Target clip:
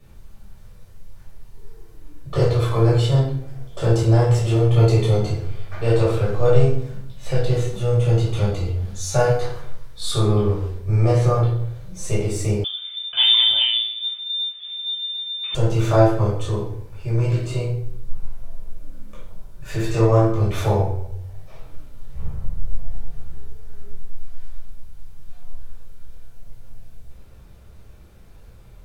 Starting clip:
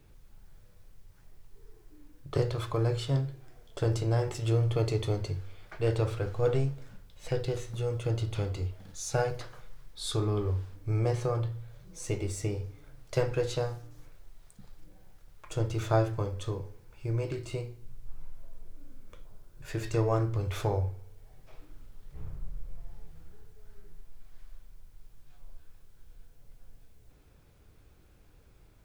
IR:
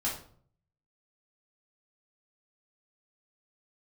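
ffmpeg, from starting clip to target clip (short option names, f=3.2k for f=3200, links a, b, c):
-filter_complex "[1:a]atrim=start_sample=2205,asetrate=32634,aresample=44100[a];[0:a][a]afir=irnorm=-1:irlink=0,asettb=1/sr,asplit=3[b][c][d];[b]atrim=end=12.644[e];[c]atrim=start=12.64:end=15.55,asetpts=PTS-STARTPTS,afade=t=in:d=0.004:c=qsin,afade=t=out:st=2.906:d=0.004:c=qsin,lowpass=f=3.1k:t=q:w=0.5098,lowpass=f=3.1k:t=q:w=0.6013,lowpass=f=3.1k:t=q:w=0.9,lowpass=f=3.1k:t=q:w=2.563,afreqshift=-3600[f];[d]atrim=start=15.546[g];[e][f]acrossfade=d=0.004:c1=hsin:c2=qsin[h];[h][g]acrossfade=d=0.004:c1=qsin:c2=hsin,volume=2.5dB"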